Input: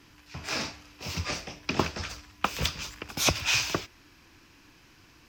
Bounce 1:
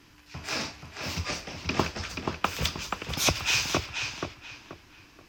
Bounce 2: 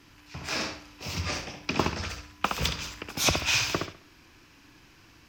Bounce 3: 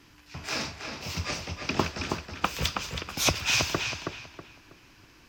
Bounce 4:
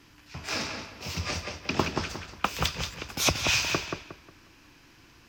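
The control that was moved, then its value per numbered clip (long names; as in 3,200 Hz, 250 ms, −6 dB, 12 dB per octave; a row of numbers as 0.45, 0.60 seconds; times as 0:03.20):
feedback echo with a low-pass in the loop, delay time: 481, 67, 322, 180 milliseconds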